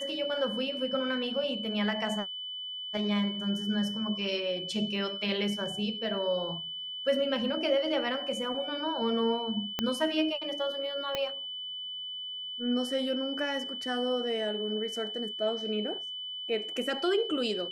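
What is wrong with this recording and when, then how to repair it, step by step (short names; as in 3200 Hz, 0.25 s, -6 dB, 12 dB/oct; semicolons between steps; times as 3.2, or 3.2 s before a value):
tone 3000 Hz -36 dBFS
9.79 pop -14 dBFS
11.15 pop -16 dBFS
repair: de-click; notch 3000 Hz, Q 30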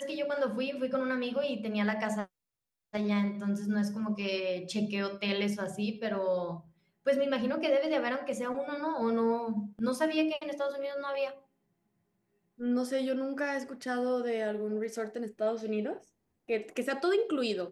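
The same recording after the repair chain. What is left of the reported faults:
9.79 pop
11.15 pop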